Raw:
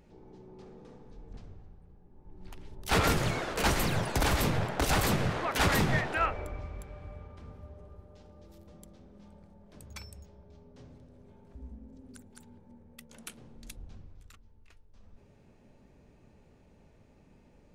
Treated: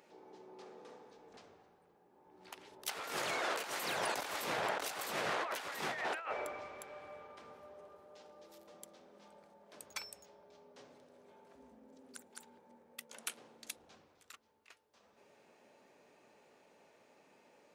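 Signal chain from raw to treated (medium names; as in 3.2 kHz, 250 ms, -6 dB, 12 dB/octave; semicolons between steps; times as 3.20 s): high-pass 520 Hz 12 dB/octave; compressor with a negative ratio -38 dBFS, ratio -1; trim -1.5 dB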